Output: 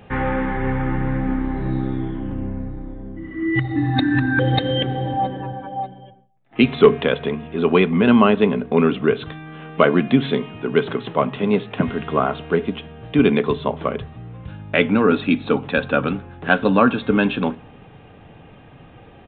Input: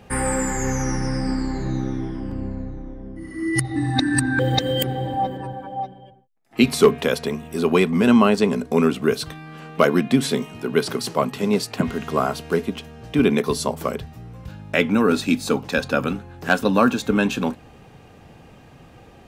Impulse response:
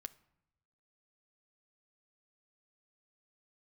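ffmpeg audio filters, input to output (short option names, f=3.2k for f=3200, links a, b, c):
-filter_complex "[0:a]asplit=2[a][b];[1:a]atrim=start_sample=2205[c];[b][c]afir=irnorm=-1:irlink=0,volume=10dB[d];[a][d]amix=inputs=2:normalize=0,aresample=8000,aresample=44100,volume=-7dB"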